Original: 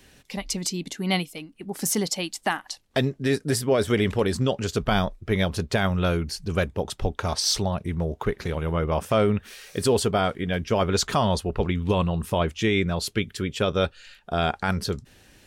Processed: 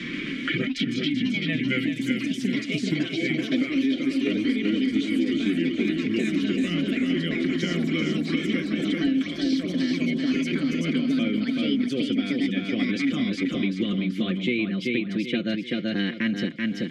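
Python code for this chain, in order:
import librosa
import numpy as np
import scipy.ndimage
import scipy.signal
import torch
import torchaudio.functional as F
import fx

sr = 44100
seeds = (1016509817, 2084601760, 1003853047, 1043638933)

y = fx.speed_glide(x, sr, from_pct=62, to_pct=121)
y = fx.high_shelf(y, sr, hz=9600.0, db=-9.5)
y = y + 0.79 * np.pad(y, (int(5.7 * sr / 1000.0), 0))[:len(y)]
y = fx.echo_pitch(y, sr, ms=132, semitones=4, count=3, db_per_echo=-3.0)
y = fx.vowel_filter(y, sr, vowel='i')
y = fx.echo_feedback(y, sr, ms=384, feedback_pct=32, wet_db=-5.0)
y = fx.band_squash(y, sr, depth_pct=100)
y = y * 10.0 ** (6.5 / 20.0)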